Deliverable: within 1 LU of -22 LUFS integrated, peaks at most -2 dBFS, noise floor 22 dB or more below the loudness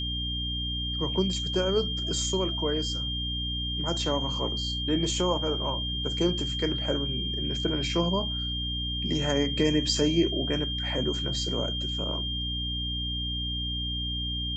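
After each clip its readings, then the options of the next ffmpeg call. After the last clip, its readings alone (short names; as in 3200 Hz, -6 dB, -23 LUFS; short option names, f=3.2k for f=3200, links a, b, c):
hum 60 Hz; harmonics up to 300 Hz; hum level -31 dBFS; steady tone 3200 Hz; tone level -31 dBFS; loudness -28.0 LUFS; peak -12.0 dBFS; loudness target -22.0 LUFS
-> -af "bandreject=f=60:t=h:w=4,bandreject=f=120:t=h:w=4,bandreject=f=180:t=h:w=4,bandreject=f=240:t=h:w=4,bandreject=f=300:t=h:w=4"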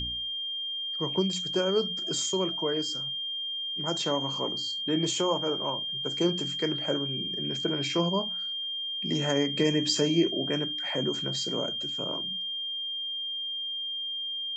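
hum none; steady tone 3200 Hz; tone level -31 dBFS
-> -af "bandreject=f=3.2k:w=30"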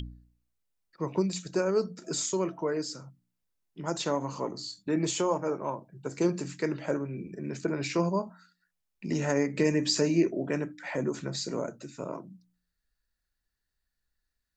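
steady tone none; loudness -31.0 LUFS; peak -13.5 dBFS; loudness target -22.0 LUFS
-> -af "volume=9dB"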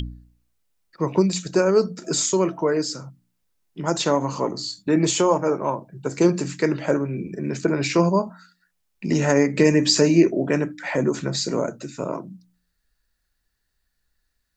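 loudness -22.0 LUFS; peak -4.5 dBFS; noise floor -74 dBFS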